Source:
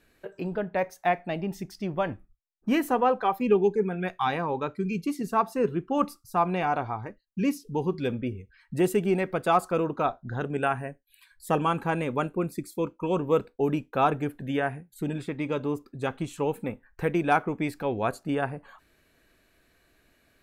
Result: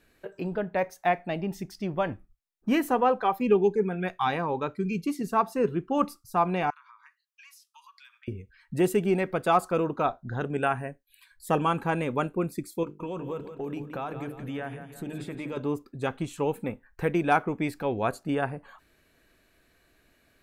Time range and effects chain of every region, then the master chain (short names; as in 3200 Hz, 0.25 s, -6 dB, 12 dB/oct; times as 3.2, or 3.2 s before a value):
6.7–8.28 steep high-pass 1000 Hz 96 dB/oct + compressor 10:1, threshold -49 dBFS
12.83–15.57 notches 50/100/150/200/250/300/350/400/450 Hz + compressor 5:1, threshold -31 dBFS + feedback echo 0.171 s, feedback 47%, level -10 dB
whole clip: dry